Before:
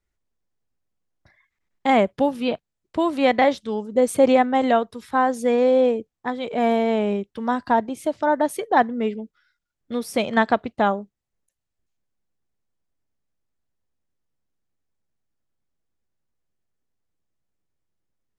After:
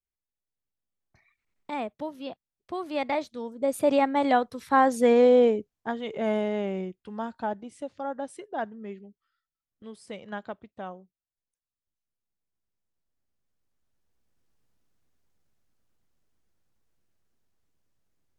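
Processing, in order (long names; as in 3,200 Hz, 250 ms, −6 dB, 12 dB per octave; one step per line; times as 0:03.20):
source passing by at 0:05.02, 30 m/s, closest 19 metres
camcorder AGC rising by 8.6 dB per second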